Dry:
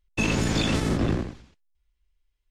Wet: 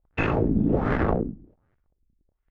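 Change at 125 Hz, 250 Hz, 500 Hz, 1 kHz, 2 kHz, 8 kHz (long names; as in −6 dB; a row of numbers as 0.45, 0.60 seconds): 0.0 dB, +1.5 dB, +4.5 dB, +4.0 dB, −1.5 dB, below −25 dB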